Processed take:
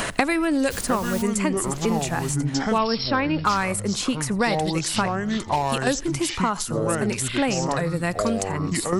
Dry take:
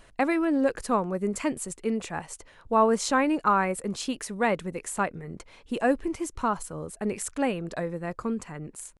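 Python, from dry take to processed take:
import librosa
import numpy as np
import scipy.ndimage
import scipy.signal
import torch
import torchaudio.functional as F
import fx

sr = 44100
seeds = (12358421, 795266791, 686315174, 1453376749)

p1 = fx.low_shelf(x, sr, hz=430.0, db=-11.5)
p2 = np.clip(10.0 ** (18.0 / 20.0) * p1, -1.0, 1.0) / 10.0 ** (18.0 / 20.0)
p3 = p1 + (p2 * 10.0 ** (-7.5 / 20.0))
p4 = fx.dmg_noise_colour(p3, sr, seeds[0], colour='pink', level_db=-44.0, at=(0.7, 1.21), fade=0.02)
p5 = fx.level_steps(p4, sr, step_db=17, at=(5.12, 5.87))
p6 = fx.bass_treble(p5, sr, bass_db=12, treble_db=5)
p7 = p6 + fx.echo_single(p6, sr, ms=84, db=-23.5, dry=0)
p8 = fx.echo_pitch(p7, sr, ms=627, semitones=-6, count=2, db_per_echo=-6.0)
p9 = fx.brickwall_lowpass(p8, sr, high_hz=5600.0, at=(2.78, 3.45))
p10 = fx.band_squash(p9, sr, depth_pct=100)
y = p10 * 10.0 ** (1.5 / 20.0)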